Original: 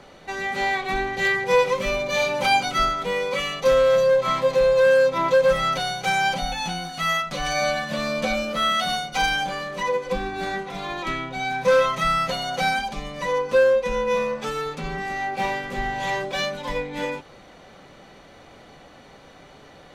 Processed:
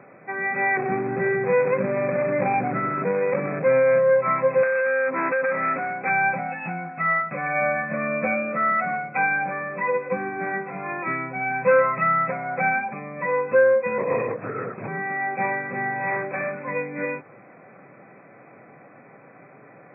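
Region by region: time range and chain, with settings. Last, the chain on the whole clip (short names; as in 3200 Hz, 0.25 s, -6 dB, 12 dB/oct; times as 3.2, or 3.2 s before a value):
0.77–3.99 median filter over 41 samples + fast leveller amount 50%
4.63–6.1 resonant high-pass 250 Hz, resonance Q 2.8 + compressor, threshold -16 dBFS + core saturation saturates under 1600 Hz
13.98–14.88 air absorption 390 m + LPC vocoder at 8 kHz whisper
16.1–16.65 CVSD 16 kbps + HPF 56 Hz
whole clip: FFT band-pass 100–2600 Hz; notch 880 Hz, Q 12; dynamic EQ 1900 Hz, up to +3 dB, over -38 dBFS, Q 1.6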